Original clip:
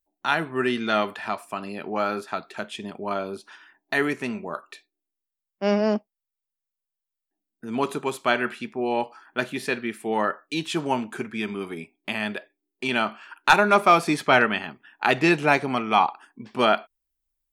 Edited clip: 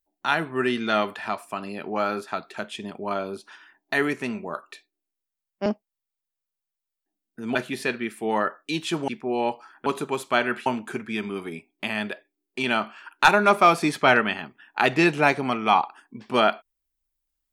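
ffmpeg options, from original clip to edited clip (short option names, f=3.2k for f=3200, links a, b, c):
-filter_complex "[0:a]asplit=6[a][b][c][d][e][f];[a]atrim=end=5.662[g];[b]atrim=start=5.908:end=7.802[h];[c]atrim=start=9.378:end=10.912[i];[d]atrim=start=8.598:end=9.382[j];[e]atrim=start=7.798:end=8.602[k];[f]atrim=start=10.908[l];[g][h]acrossfade=d=0.004:c1=hsin:c2=hsin[m];[m][i]acrossfade=d=0.004:c1=hsin:c2=hsin[n];[n][j]acrossfade=d=0.004:c1=hsin:c2=hsin[o];[o][k]acrossfade=d=0.004:c1=hsin:c2=hsin[p];[p][l]acrossfade=d=0.004:c1=hsin:c2=hsin"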